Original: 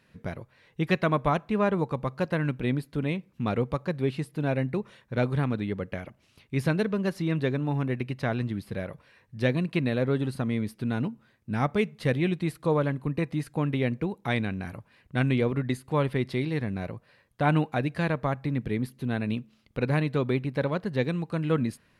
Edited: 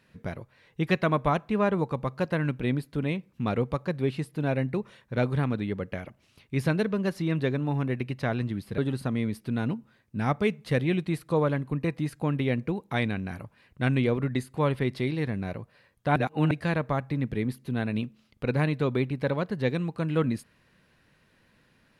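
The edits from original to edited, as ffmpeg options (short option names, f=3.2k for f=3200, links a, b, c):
-filter_complex "[0:a]asplit=4[a][b][c][d];[a]atrim=end=8.782[e];[b]atrim=start=10.118:end=17.502[f];[c]atrim=start=17.498:end=17.852,asetpts=PTS-STARTPTS,areverse[g];[d]atrim=start=17.848[h];[e][f]acrossfade=d=0.004:c1=hsin:c2=hsin[i];[i][g]acrossfade=d=0.004:c1=hsin:c2=hsin[j];[j][h]acrossfade=d=0.004:c1=hsin:c2=hsin"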